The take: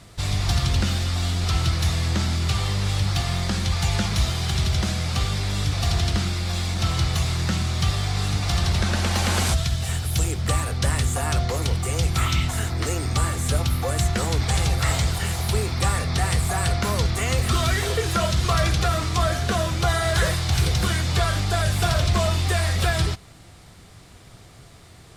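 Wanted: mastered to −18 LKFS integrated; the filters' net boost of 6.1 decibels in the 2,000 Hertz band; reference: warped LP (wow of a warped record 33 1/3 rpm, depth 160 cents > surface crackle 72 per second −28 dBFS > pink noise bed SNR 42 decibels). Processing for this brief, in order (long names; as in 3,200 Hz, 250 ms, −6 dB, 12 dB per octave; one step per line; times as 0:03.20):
parametric band 2,000 Hz +7.5 dB
wow of a warped record 33 1/3 rpm, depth 160 cents
surface crackle 72 per second −28 dBFS
pink noise bed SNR 42 dB
level +4 dB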